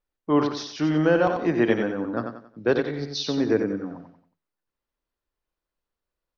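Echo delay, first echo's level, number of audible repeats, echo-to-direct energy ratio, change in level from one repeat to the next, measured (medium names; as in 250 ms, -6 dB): 91 ms, -6.0 dB, 4, -5.5 dB, -9.0 dB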